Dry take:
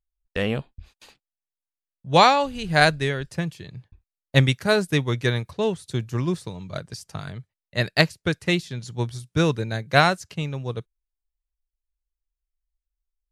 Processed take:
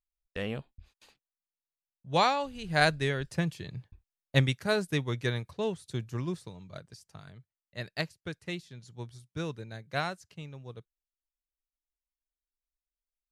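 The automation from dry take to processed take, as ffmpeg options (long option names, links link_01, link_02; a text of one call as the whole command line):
ffmpeg -i in.wav -af "volume=-1dB,afade=type=in:start_time=2.58:duration=1.15:silence=0.354813,afade=type=out:start_time=3.73:duration=0.73:silence=0.446684,afade=type=out:start_time=6.03:duration=1.03:silence=0.446684" out.wav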